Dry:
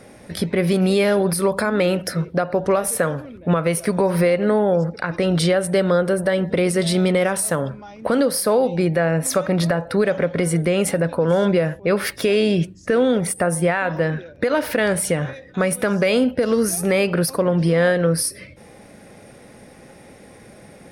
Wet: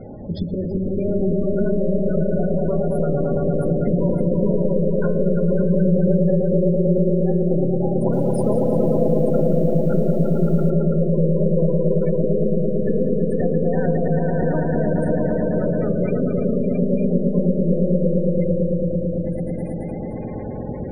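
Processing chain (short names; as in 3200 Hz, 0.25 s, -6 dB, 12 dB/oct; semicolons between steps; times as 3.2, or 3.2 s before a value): soft clip -15.5 dBFS, distortion -14 dB; tilt -2.5 dB/oct; compressor 16:1, threshold -27 dBFS, peak gain reduction 16.5 dB; swelling echo 0.111 s, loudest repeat 5, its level -3 dB; spectral gate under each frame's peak -20 dB strong; bell 1700 Hz -7 dB 0.25 oct; de-hum 65.71 Hz, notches 26; 7.95–10.7 lo-fi delay 0.176 s, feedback 55%, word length 8-bit, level -13 dB; gain +5 dB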